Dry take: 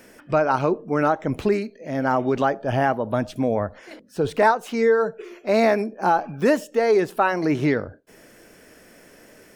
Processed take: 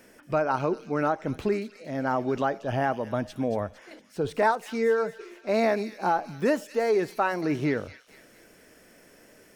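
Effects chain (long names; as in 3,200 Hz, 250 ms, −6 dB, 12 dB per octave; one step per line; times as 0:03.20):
delay with a high-pass on its return 229 ms, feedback 49%, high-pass 3,200 Hz, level −6.5 dB
level −5.5 dB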